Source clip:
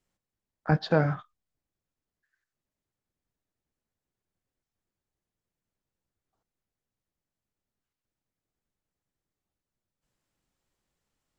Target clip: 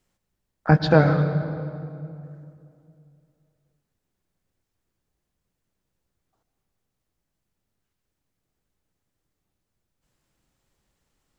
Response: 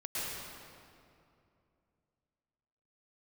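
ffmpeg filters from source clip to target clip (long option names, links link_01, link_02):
-filter_complex "[0:a]asplit=2[link_01][link_02];[link_02]lowshelf=frequency=390:gain=7.5[link_03];[1:a]atrim=start_sample=2205[link_04];[link_03][link_04]afir=irnorm=-1:irlink=0,volume=-13.5dB[link_05];[link_01][link_05]amix=inputs=2:normalize=0,volume=6dB"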